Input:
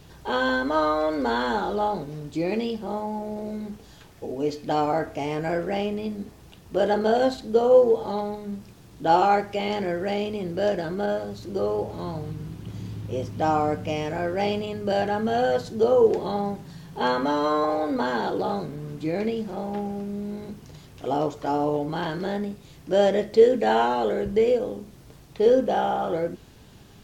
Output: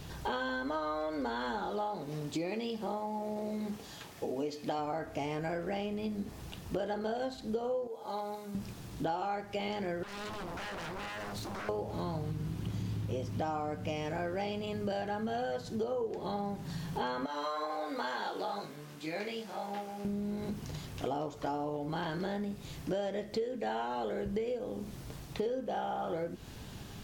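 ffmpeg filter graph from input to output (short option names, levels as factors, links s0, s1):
-filter_complex "[0:a]asettb=1/sr,asplit=3[s0][s1][s2];[s0]atrim=end=1.684[s3];[s1]atrim=start=1.68:end=4.79,asetpts=PTS-STARTPTS,afade=t=in:d=0.004:c=qsin,afade=t=out:st=3.106:d=0.004:c=qsin,highpass=f=240:p=1,bandreject=f=1500:w=20[s4];[s2]atrim=start=4.786[s5];[s3][s4]acrossfade=d=0.004:c1=hsin:c2=qsin[s6];[s6][s5]acrossfade=d=0.004:c1=qsin:c2=hsin,asettb=1/sr,asplit=3[s7][s8][s9];[s7]atrim=end=7.874[s10];[s8]atrim=start=7.87:end=8.55,asetpts=PTS-STARTPTS,afade=t=in:d=0.004:c=qsin,afade=t=out:st=0.676:d=0.004:c=qsin,highpass=f=1100:p=1,equalizer=f=3100:t=o:w=2.1:g=-6,bandreject=f=1800:w=9.2[s11];[s9]atrim=start=8.546[s12];[s10][s11]acrossfade=d=0.004:c1=hsin:c2=qsin[s13];[s13][s12]acrossfade=d=0.004:c1=qsin:c2=hsin,asettb=1/sr,asplit=3[s14][s15][s16];[s14]atrim=end=10.034[s17];[s15]atrim=start=10.03:end=11.69,asetpts=PTS-STARTPTS,afade=t=in:d=0.004:c=qsin,afade=t=out:st=1.656:d=0.004:c=qsin,acompressor=threshold=0.0251:ratio=12:attack=3.2:release=140:knee=1:detection=peak,bandreject=f=60:t=h:w=6,bandreject=f=120:t=h:w=6,bandreject=f=180:t=h:w=6,bandreject=f=240:t=h:w=6,bandreject=f=300:t=h:w=6,bandreject=f=360:t=h:w=6,aeval=exprs='0.0119*(abs(mod(val(0)/0.0119+3,4)-2)-1)':c=same[s18];[s16]atrim=start=11.686[s19];[s17][s18]acrossfade=d=0.004:c1=hsin:c2=qsin[s20];[s20][s19]acrossfade=d=0.004:c1=qsin:c2=hsin,asettb=1/sr,asplit=3[s21][s22][s23];[s21]atrim=end=17.264[s24];[s22]atrim=start=17.26:end=20.05,asetpts=PTS-STARTPTS,afade=t=in:d=0.004:c=qsin,afade=t=out:st=2.786:d=0.004:c=qsin,highpass=f=1100:p=1,flanger=delay=19:depth=2.6:speed=2.1[s25];[s23]atrim=start=20.046[s26];[s24][s25]acrossfade=d=0.004:c1=hsin:c2=qsin[s27];[s27][s26]acrossfade=d=0.004:c1=qsin:c2=hsin,equalizer=f=410:w=1.5:g=-2.5,acompressor=threshold=0.0158:ratio=10,volume=1.5"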